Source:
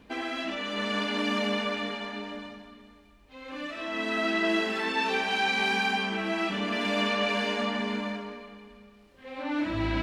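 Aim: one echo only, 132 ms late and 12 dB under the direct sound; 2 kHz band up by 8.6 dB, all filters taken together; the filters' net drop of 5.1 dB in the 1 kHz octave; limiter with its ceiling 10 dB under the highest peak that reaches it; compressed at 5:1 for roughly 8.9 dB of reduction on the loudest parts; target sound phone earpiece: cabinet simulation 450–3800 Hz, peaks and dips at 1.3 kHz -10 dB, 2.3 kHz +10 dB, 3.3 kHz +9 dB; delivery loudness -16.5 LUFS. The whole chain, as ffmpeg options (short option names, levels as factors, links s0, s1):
-af "equalizer=f=1000:t=o:g=-4.5,equalizer=f=2000:t=o:g=3,acompressor=threshold=0.0224:ratio=5,alimiter=level_in=2.66:limit=0.0631:level=0:latency=1,volume=0.376,highpass=450,equalizer=f=1300:t=q:w=4:g=-10,equalizer=f=2300:t=q:w=4:g=10,equalizer=f=3300:t=q:w=4:g=9,lowpass=f=3800:w=0.5412,lowpass=f=3800:w=1.3066,aecho=1:1:132:0.251,volume=8.41"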